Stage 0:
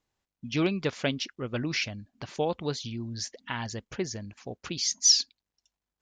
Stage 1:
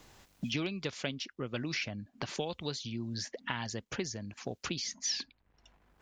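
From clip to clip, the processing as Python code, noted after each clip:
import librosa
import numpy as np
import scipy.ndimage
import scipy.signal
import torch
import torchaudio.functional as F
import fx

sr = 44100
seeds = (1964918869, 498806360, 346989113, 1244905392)

y = fx.band_squash(x, sr, depth_pct=100)
y = F.gain(torch.from_numpy(y), -6.0).numpy()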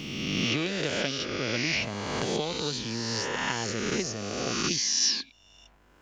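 y = fx.spec_swells(x, sr, rise_s=2.03)
y = F.gain(torch.from_numpy(y), 2.5).numpy()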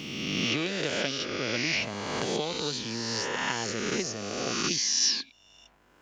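y = fx.low_shelf(x, sr, hz=93.0, db=-10.5)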